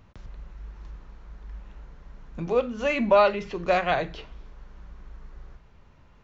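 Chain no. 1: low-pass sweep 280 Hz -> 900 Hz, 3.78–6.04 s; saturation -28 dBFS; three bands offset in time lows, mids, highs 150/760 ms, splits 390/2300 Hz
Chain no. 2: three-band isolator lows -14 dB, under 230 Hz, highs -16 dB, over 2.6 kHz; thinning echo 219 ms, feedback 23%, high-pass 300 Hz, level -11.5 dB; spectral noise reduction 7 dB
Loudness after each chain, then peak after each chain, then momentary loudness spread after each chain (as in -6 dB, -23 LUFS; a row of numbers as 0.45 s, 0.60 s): -38.5 LUFS, -24.5 LUFS; -23.0 dBFS, -8.0 dBFS; 17 LU, 15 LU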